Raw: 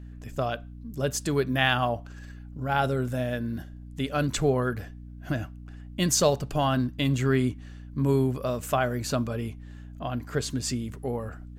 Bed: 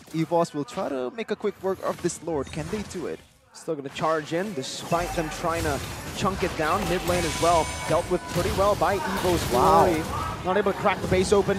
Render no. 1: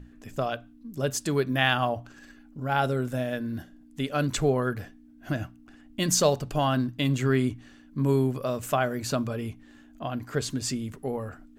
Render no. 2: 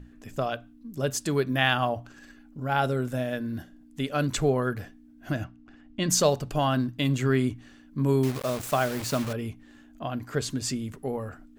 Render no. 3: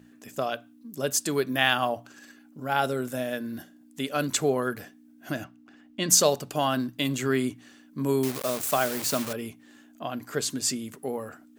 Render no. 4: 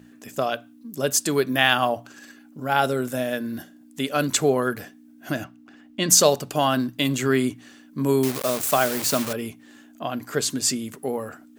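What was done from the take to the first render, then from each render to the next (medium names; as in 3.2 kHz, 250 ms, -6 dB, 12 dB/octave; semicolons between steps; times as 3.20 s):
hum notches 60/120/180 Hz
5.44–6.10 s: distance through air 110 m; 8.23–9.33 s: word length cut 6-bit, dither none
high-pass 200 Hz 12 dB/octave; treble shelf 6 kHz +10 dB
trim +4.5 dB; peak limiter -3 dBFS, peak gain reduction 2 dB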